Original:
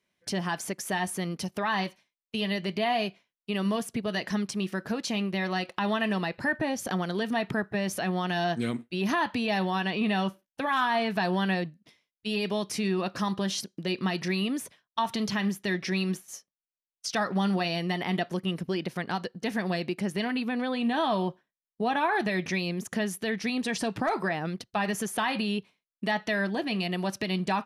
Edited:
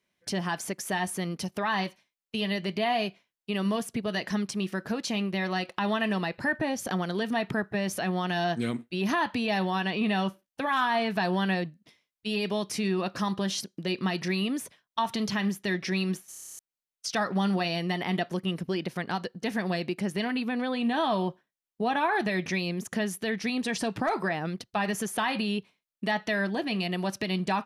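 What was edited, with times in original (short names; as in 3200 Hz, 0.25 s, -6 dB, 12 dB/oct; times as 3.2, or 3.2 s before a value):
16.29 stutter in place 0.03 s, 10 plays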